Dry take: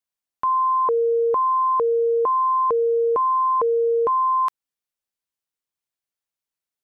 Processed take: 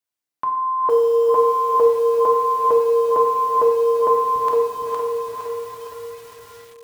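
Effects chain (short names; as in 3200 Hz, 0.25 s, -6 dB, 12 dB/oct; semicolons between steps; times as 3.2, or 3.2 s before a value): HPF 79 Hz 12 dB/oct, from 4.36 s 200 Hz; diffused feedback echo 0.457 s, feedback 50%, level -5 dB; FDN reverb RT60 1.3 s, low-frequency decay 1×, high-frequency decay 0.75×, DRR 1.5 dB; lo-fi delay 0.462 s, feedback 55%, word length 7-bit, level -3.5 dB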